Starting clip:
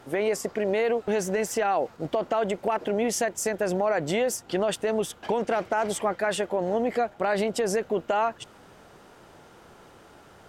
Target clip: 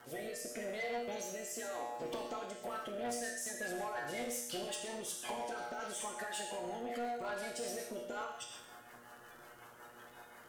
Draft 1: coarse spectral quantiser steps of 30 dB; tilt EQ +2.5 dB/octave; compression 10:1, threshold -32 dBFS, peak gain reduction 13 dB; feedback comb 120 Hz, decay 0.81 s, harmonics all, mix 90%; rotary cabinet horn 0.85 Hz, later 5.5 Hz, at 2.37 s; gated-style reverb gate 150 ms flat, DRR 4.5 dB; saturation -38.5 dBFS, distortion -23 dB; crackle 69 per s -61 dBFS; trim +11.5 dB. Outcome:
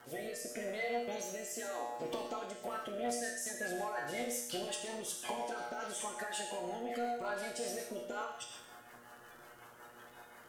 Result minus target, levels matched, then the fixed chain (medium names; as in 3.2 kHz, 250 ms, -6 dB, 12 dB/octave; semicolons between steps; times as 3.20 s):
saturation: distortion -8 dB
coarse spectral quantiser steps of 30 dB; tilt EQ +2.5 dB/octave; compression 10:1, threshold -32 dBFS, peak gain reduction 13 dB; feedback comb 120 Hz, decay 0.81 s, harmonics all, mix 90%; rotary cabinet horn 0.85 Hz, later 5.5 Hz, at 2.37 s; gated-style reverb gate 150 ms flat, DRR 4.5 dB; saturation -45 dBFS, distortion -14 dB; crackle 69 per s -61 dBFS; trim +11.5 dB